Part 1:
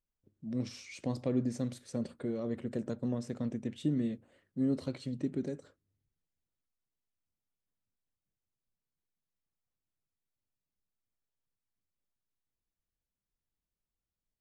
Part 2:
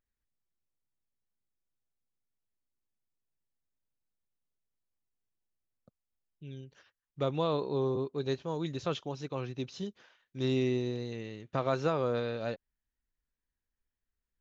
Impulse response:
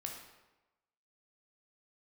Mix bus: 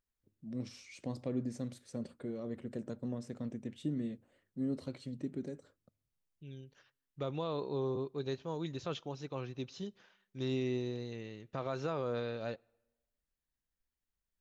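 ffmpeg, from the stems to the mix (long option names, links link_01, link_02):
-filter_complex "[0:a]volume=-5dB[link_01];[1:a]alimiter=limit=-22dB:level=0:latency=1:release=32,volume=-4.5dB,asplit=2[link_02][link_03];[link_03]volume=-22.5dB[link_04];[2:a]atrim=start_sample=2205[link_05];[link_04][link_05]afir=irnorm=-1:irlink=0[link_06];[link_01][link_02][link_06]amix=inputs=3:normalize=0"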